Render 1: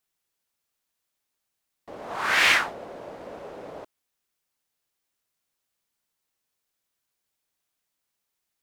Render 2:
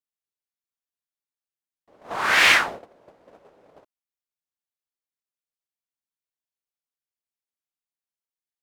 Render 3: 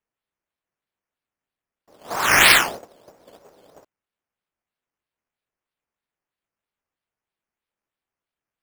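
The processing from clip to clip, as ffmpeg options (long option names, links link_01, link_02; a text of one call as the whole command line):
ffmpeg -i in.wav -af "agate=range=-20dB:threshold=-36dB:ratio=16:detection=peak,volume=3.5dB" out.wav
ffmpeg -i in.wav -af "acrusher=samples=9:mix=1:aa=0.000001:lfo=1:lforange=5.4:lforate=3.1,volume=3dB" out.wav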